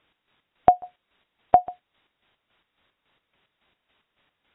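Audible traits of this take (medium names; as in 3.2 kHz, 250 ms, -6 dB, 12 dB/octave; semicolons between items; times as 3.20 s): a quantiser's noise floor 12-bit, dither triangular; chopped level 3.6 Hz, depth 65%, duty 45%; AAC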